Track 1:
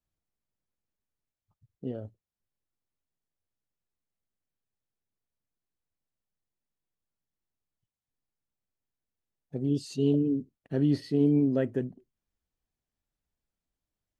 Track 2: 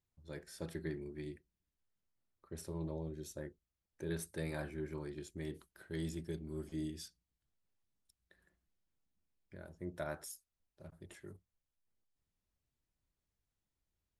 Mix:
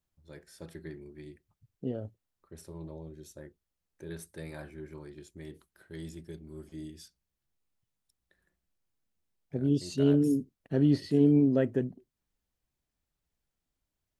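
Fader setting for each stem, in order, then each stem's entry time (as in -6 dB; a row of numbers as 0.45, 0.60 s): +1.0, -2.0 dB; 0.00, 0.00 s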